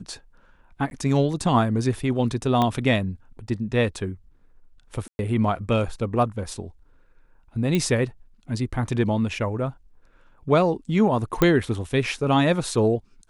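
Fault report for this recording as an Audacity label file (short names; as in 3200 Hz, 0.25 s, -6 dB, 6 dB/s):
0.900000	0.910000	gap
2.620000	2.620000	pop -10 dBFS
5.080000	5.190000	gap 0.111 s
7.750000	7.750000	pop -11 dBFS
11.420000	11.420000	pop -6 dBFS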